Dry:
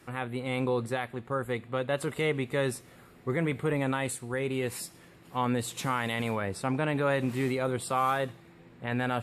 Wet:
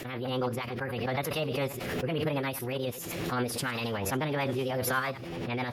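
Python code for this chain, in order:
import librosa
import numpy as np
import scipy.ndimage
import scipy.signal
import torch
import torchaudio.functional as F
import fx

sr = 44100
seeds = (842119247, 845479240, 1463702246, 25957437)

y = fx.reverse_delay(x, sr, ms=107, wet_db=-13.0)
y = fx.formant_shift(y, sr, semitones=5)
y = fx.rotary(y, sr, hz=6.7)
y = fx.stretch_vocoder(y, sr, factor=0.62)
y = fx.pre_swell(y, sr, db_per_s=30.0)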